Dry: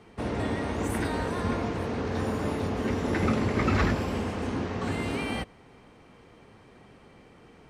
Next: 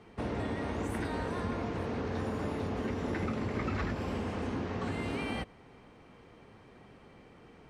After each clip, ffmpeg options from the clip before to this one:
ffmpeg -i in.wav -af "highshelf=frequency=7000:gain=-7.5,acompressor=threshold=-29dB:ratio=4,volume=-2dB" out.wav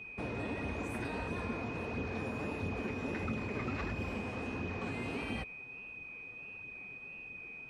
ffmpeg -i in.wav -af "aeval=exprs='val(0)+0.00891*sin(2*PI*2500*n/s)':channel_layout=same,flanger=delay=0.3:depth=7.9:regen=45:speed=1.5:shape=sinusoidal" out.wav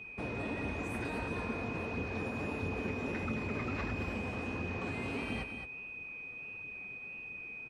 ffmpeg -i in.wav -af "aecho=1:1:218:0.376" out.wav

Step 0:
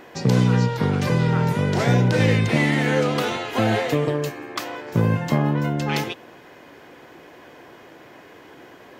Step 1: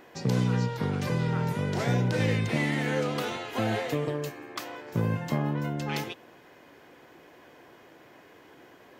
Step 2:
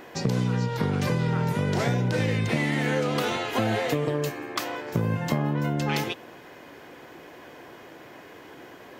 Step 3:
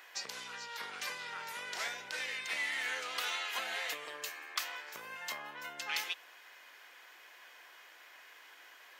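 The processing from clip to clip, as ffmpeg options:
ffmpeg -i in.wav -af "highshelf=frequency=9800:gain=4,volume=-8dB" out.wav
ffmpeg -i in.wav -af "acompressor=threshold=-29dB:ratio=5,volume=7.5dB" out.wav
ffmpeg -i in.wav -af "highpass=1500,volume=-3.5dB" out.wav

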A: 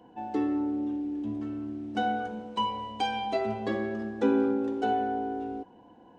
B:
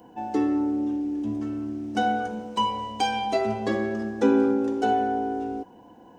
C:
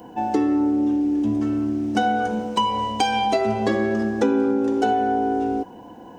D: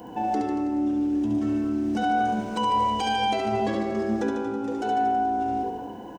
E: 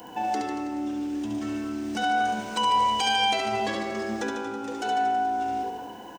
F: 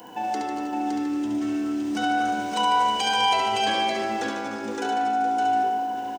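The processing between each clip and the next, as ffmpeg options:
ffmpeg -i in.wav -af "aexciter=amount=2.9:drive=3.9:freq=5100,volume=4.5dB" out.wav
ffmpeg -i in.wav -af "acompressor=threshold=-26dB:ratio=4,volume=8.5dB" out.wav
ffmpeg -i in.wav -filter_complex "[0:a]alimiter=limit=-20dB:level=0:latency=1,asplit=2[link_01][link_02];[link_02]aecho=0:1:70|147|231.7|324.9|427.4:0.631|0.398|0.251|0.158|0.1[link_03];[link_01][link_03]amix=inputs=2:normalize=0" out.wav
ffmpeg -i in.wav -af "tiltshelf=frequency=860:gain=-7.5" out.wav
ffmpeg -i in.wav -filter_complex "[0:a]highpass=frequency=120:poles=1,asplit=2[link_01][link_02];[link_02]aecho=0:1:243|564:0.299|0.631[link_03];[link_01][link_03]amix=inputs=2:normalize=0" out.wav

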